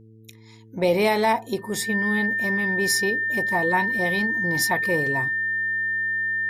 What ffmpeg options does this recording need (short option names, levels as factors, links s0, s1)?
-af "bandreject=f=110.7:t=h:w=4,bandreject=f=221.4:t=h:w=4,bandreject=f=332.1:t=h:w=4,bandreject=f=442.8:t=h:w=4,bandreject=f=1800:w=30"